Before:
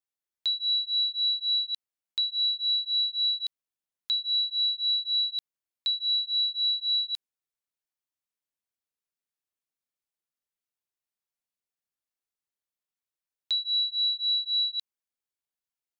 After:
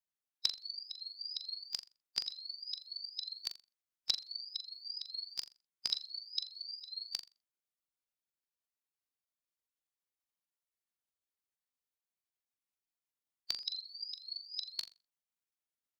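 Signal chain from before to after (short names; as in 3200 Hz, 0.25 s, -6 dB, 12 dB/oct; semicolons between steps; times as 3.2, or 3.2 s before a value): repeated pitch sweeps +4.5 st, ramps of 0.456 s; spectral gate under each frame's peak -10 dB weak; flutter echo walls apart 7.2 m, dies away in 0.27 s; gain +7.5 dB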